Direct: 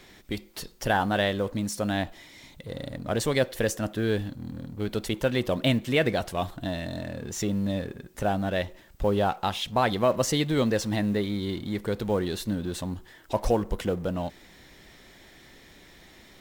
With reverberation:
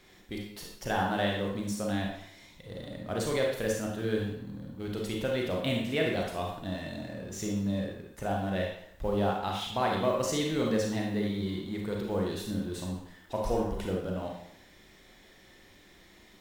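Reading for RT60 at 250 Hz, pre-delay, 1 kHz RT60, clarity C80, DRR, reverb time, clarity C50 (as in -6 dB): 0.65 s, 30 ms, 0.70 s, 5.5 dB, -1.0 dB, 0.70 s, 2.0 dB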